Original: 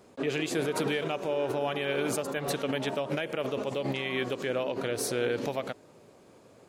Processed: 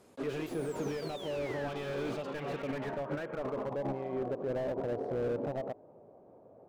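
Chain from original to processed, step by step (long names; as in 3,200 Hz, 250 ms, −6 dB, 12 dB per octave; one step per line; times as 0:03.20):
low-pass filter sweep 12,000 Hz → 710 Hz, 0:00.58–0:04.08
sound drawn into the spectrogram fall, 0:00.46–0:01.69, 1,500–12,000 Hz −37 dBFS
slew-rate limiting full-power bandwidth 24 Hz
level −4.5 dB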